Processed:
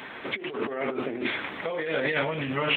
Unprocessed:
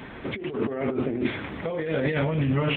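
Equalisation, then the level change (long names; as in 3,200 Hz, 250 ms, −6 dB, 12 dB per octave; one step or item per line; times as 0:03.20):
high-pass filter 920 Hz 6 dB per octave
+5.0 dB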